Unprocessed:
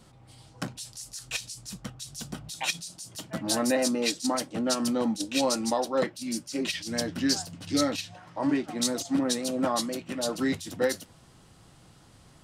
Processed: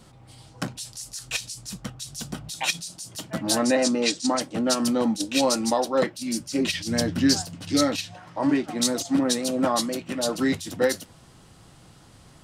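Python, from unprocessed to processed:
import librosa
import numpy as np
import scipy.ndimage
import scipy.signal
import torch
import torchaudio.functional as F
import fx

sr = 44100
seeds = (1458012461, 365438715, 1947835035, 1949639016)

y = fx.lowpass(x, sr, hz=8600.0, slope=24, at=(3.58, 4.41))
y = fx.low_shelf(y, sr, hz=160.0, db=10.0, at=(6.4, 7.42))
y = F.gain(torch.from_numpy(y), 4.0).numpy()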